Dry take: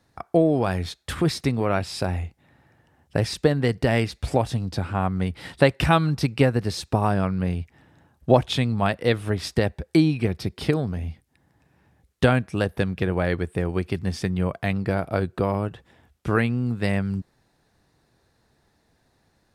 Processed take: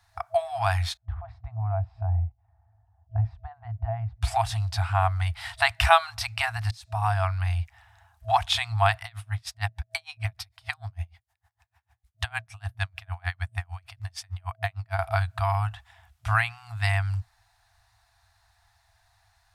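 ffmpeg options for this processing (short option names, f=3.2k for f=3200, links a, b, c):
-filter_complex "[0:a]asettb=1/sr,asplit=3[a][b][c];[a]atrim=end=0.974[d];[b]atrim=start=0.97:end=4.22,asetpts=PTS-STARTPTS,afade=t=in:d=0.004:c=qsin,afade=t=out:st=3.246:d=0.004:c=qsin,lowpass=f=390:t=q:w=4.9[e];[c]atrim=start=4.216[f];[d][e]acrossfade=d=0.004:c1=hsin:c2=qsin[g];[g][f]acrossfade=d=0.004:c1=qsin:c2=hsin,asettb=1/sr,asplit=3[h][i][j];[h]atrim=end=9.044[k];[i]atrim=start=9.04:end=14.99,asetpts=PTS-STARTPTS,afade=t=in:d=0.004:c=qsin,afade=t=out:st=5.946:d=0.004:c=qsin,aeval=exprs='val(0)*pow(10,-36*(0.5-0.5*cos(2*PI*6.6*n/s))/20)':c=same[l];[j]atrim=start=14.986[m];[k][l]acrossfade=d=0.004:c1=hsin:c2=qsin[n];[n][m]acrossfade=d=0.004:c1=qsin:c2=hsin,asplit=2[o][p];[o]atrim=end=6.71,asetpts=PTS-STARTPTS,afade=t=out:st=6.706:d=0.004:c=hsin[q];[p]atrim=start=6.71,asetpts=PTS-STARTPTS,afade=t=in:d=0.57[r];[q][r]concat=n=2:v=0:a=1,afftfilt=real='re*(1-between(b*sr/4096,110,650))':imag='im*(1-between(b*sr/4096,110,650))':win_size=4096:overlap=0.75,volume=3dB"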